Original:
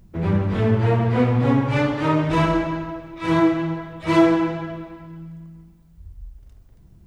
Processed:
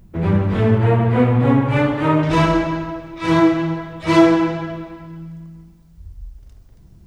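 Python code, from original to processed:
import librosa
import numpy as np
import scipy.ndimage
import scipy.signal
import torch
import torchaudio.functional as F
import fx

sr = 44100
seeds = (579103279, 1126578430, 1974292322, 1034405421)

y = fx.peak_eq(x, sr, hz=5300.0, db=fx.steps((0.0, -3.0), (0.78, -9.5), (2.23, 4.0)), octaves=0.96)
y = F.gain(torch.from_numpy(y), 3.5).numpy()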